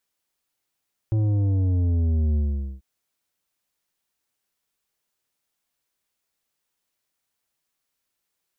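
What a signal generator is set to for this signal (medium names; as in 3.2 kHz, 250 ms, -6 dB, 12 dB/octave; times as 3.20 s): sub drop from 110 Hz, over 1.69 s, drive 9 dB, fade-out 0.45 s, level -19.5 dB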